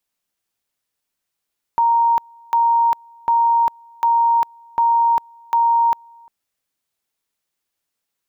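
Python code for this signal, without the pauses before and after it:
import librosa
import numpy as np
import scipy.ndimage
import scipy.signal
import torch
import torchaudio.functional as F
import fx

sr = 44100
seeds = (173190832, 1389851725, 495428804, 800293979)

y = fx.two_level_tone(sr, hz=931.0, level_db=-12.0, drop_db=30.0, high_s=0.4, low_s=0.35, rounds=6)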